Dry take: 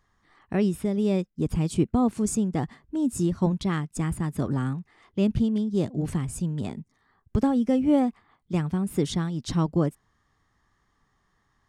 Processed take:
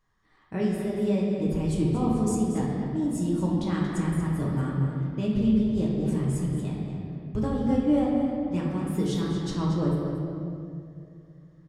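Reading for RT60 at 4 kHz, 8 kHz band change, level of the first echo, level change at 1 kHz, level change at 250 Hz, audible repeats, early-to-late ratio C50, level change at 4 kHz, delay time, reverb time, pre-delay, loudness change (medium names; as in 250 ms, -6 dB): 1.6 s, -4.5 dB, -9.0 dB, -1.5 dB, 0.0 dB, 1, -1.0 dB, -2.0 dB, 232 ms, 2.5 s, 5 ms, -0.5 dB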